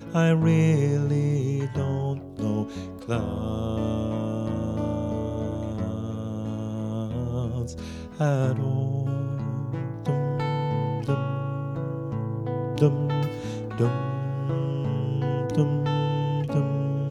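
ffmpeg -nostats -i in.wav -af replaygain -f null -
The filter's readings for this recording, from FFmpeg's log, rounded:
track_gain = +8.2 dB
track_peak = 0.304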